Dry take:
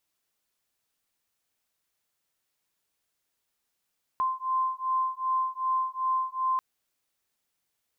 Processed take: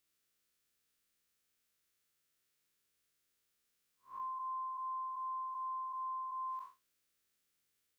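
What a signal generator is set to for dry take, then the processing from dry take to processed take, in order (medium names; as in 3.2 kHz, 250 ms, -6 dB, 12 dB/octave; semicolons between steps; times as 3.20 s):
beating tones 1.04 kHz, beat 2.6 Hz, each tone -28.5 dBFS 2.39 s
spectral blur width 162 ms; high-order bell 800 Hz -8 dB 1 oct; compression, threshold -39 dBFS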